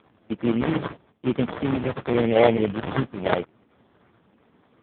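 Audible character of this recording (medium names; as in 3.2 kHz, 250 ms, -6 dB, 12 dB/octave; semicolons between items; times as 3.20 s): a buzz of ramps at a fixed pitch in blocks of 16 samples; phasing stages 2, 0.93 Hz, lowest notch 520–1900 Hz; aliases and images of a low sample rate 2.7 kHz, jitter 20%; AMR-NB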